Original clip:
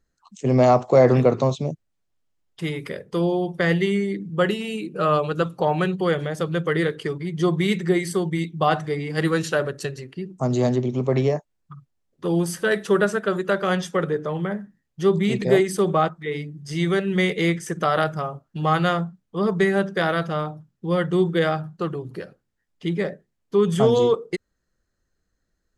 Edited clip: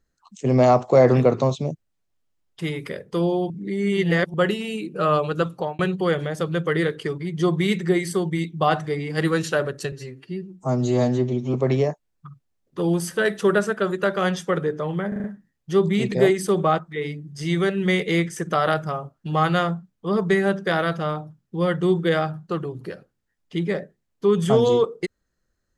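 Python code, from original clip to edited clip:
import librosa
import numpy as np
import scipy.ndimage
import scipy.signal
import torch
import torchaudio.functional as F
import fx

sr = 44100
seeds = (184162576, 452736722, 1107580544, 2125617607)

y = fx.edit(x, sr, fx.reverse_span(start_s=3.5, length_s=0.84),
    fx.fade_out_span(start_s=5.53, length_s=0.26),
    fx.stretch_span(start_s=9.92, length_s=1.08, factor=1.5),
    fx.stutter(start_s=14.54, slice_s=0.04, count=5), tone=tone)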